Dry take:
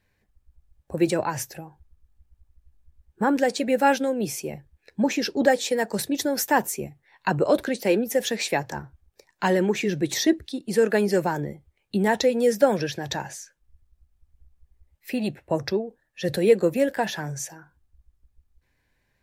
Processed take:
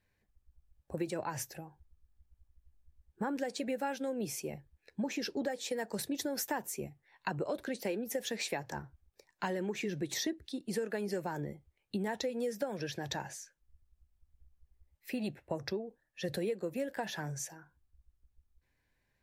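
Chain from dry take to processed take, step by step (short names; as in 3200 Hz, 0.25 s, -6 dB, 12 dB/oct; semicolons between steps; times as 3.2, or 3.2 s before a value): compressor 10:1, threshold -24 dBFS, peak gain reduction 13 dB; gain -7.5 dB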